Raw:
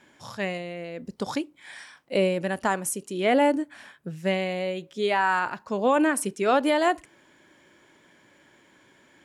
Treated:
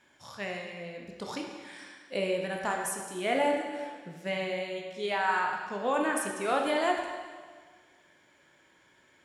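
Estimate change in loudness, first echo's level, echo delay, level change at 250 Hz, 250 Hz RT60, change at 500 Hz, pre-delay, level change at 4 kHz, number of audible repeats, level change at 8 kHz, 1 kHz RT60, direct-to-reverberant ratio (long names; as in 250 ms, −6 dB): −6.0 dB, no echo audible, no echo audible, −9.0 dB, 1.6 s, −6.0 dB, 7 ms, −3.5 dB, no echo audible, −5.0 dB, 1.7 s, 0.5 dB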